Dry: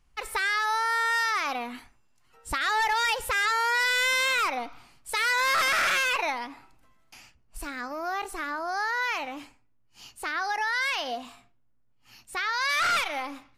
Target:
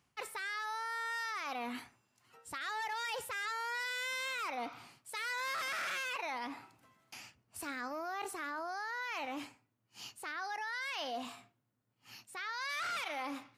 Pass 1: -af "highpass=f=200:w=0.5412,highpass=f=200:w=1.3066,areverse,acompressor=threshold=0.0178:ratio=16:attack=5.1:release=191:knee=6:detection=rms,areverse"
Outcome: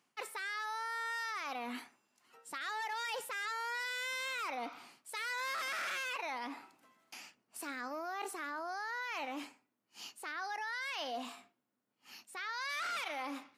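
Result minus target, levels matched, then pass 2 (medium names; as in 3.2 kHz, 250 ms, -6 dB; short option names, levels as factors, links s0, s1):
125 Hz band -10.0 dB
-af "highpass=f=94:w=0.5412,highpass=f=94:w=1.3066,areverse,acompressor=threshold=0.0178:ratio=16:attack=5.1:release=191:knee=6:detection=rms,areverse"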